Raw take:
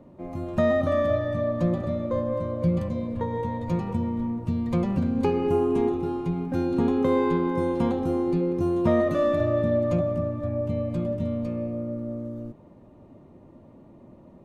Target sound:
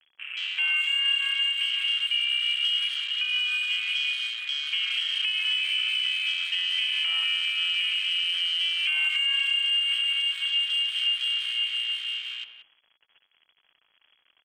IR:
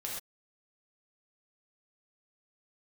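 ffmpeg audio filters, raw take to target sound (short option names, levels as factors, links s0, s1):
-filter_complex "[0:a]acrossover=split=410 2100:gain=0.0794 1 0.224[s0][s1][s2];[s0][s1][s2]amix=inputs=3:normalize=0,acrusher=bits=4:mode=log:mix=0:aa=0.000001,asplit=2[s3][s4];[1:a]atrim=start_sample=2205,asetrate=26460,aresample=44100,lowshelf=f=430:g=-9[s5];[s4][s5]afir=irnorm=-1:irlink=0,volume=0.596[s6];[s3][s6]amix=inputs=2:normalize=0,acrusher=bits=7:mix=0:aa=0.000001,asplit=2[s7][s8];[s8]acompressor=threshold=0.0316:ratio=6,volume=1[s9];[s7][s9]amix=inputs=2:normalize=0,equalizer=f=70:w=0.56:g=11.5,lowpass=f=2900:t=q:w=0.5098,lowpass=f=2900:t=q:w=0.6013,lowpass=f=2900:t=q:w=0.9,lowpass=f=2900:t=q:w=2.563,afreqshift=-3400,afwtdn=0.0251,alimiter=limit=0.133:level=0:latency=1:release=194,asplit=2[s10][s11];[s11]adelay=180,highpass=300,lowpass=3400,asoftclip=type=hard:threshold=0.0447,volume=0.282[s12];[s10][s12]amix=inputs=2:normalize=0"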